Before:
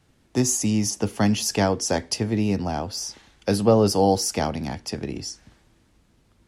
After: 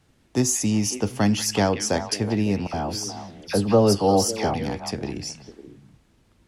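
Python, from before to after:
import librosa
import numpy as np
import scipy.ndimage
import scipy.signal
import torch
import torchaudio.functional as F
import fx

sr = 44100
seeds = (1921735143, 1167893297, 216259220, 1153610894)

p1 = fx.dispersion(x, sr, late='lows', ms=66.0, hz=1700.0, at=(2.67, 4.54))
y = p1 + fx.echo_stepped(p1, sr, ms=184, hz=2500.0, octaves=-1.4, feedback_pct=70, wet_db=-5, dry=0)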